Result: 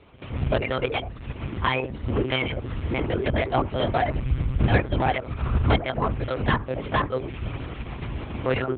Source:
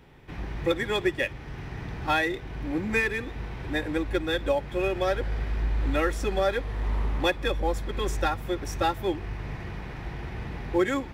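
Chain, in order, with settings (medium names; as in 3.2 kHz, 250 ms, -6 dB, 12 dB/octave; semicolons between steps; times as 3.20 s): tracing distortion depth 0.17 ms; dynamic bell 1 kHz, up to +8 dB, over -49 dBFS, Q 4.7; saturation -19 dBFS, distortion -16 dB; on a send at -10 dB: steep low-pass 1.9 kHz 36 dB/octave + reverberation RT60 0.40 s, pre-delay 76 ms; on the sum: reverb removal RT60 0.76 s; tape speed +27%; monotone LPC vocoder at 8 kHz 130 Hz; high-pass 56 Hz; peaking EQ 170 Hz -6.5 dB 0.29 oct; trim +2.5 dB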